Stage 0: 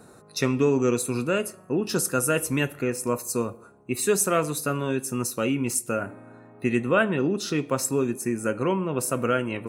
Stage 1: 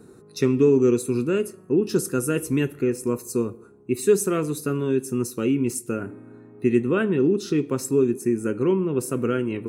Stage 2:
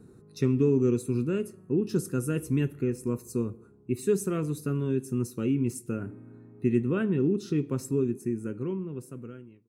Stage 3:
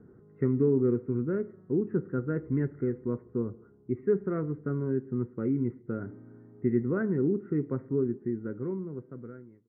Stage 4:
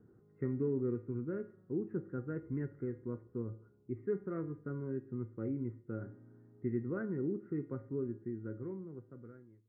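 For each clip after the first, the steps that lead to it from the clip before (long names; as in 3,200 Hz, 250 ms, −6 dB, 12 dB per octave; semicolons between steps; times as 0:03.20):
low shelf with overshoot 490 Hz +6 dB, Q 3; level −4.5 dB
fade-out on the ending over 1.88 s; bass and treble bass +10 dB, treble −1 dB; level −9 dB
Chebyshev low-pass with heavy ripple 2,100 Hz, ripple 3 dB
tuned comb filter 110 Hz, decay 0.41 s, harmonics odd, mix 70%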